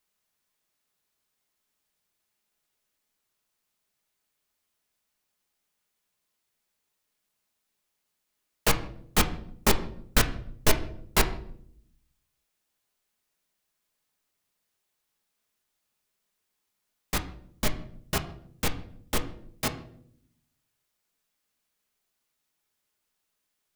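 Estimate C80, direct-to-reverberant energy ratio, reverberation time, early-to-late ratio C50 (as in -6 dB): 16.5 dB, 6.0 dB, 0.65 s, 13.5 dB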